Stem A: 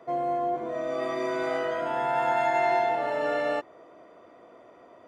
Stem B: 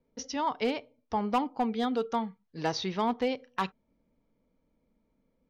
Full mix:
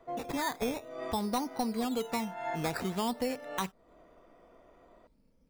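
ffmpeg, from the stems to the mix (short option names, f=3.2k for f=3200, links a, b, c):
-filter_complex "[0:a]volume=-8dB[a];[1:a]lowshelf=f=140:g=8.5,acompressor=threshold=-34dB:ratio=2,acrusher=samples=12:mix=1:aa=0.000001:lfo=1:lforange=7.2:lforate=0.51,volume=1dB,asplit=2[b][c];[c]apad=whole_len=223601[d];[a][d]sidechaincompress=threshold=-50dB:ratio=4:attack=11:release=215[e];[e][b]amix=inputs=2:normalize=0"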